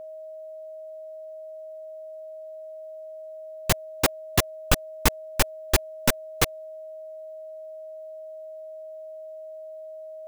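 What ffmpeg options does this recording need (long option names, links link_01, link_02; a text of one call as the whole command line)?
ffmpeg -i in.wav -af "bandreject=frequency=630:width=30" out.wav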